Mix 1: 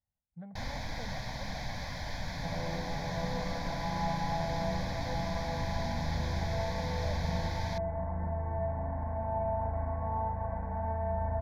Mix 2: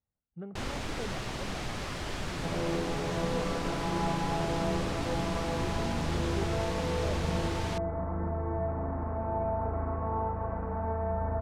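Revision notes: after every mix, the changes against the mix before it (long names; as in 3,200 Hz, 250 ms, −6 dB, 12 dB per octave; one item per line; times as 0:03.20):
master: remove phaser with its sweep stopped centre 1,900 Hz, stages 8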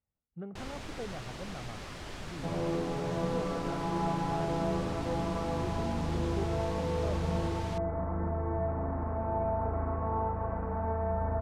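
first sound −6.5 dB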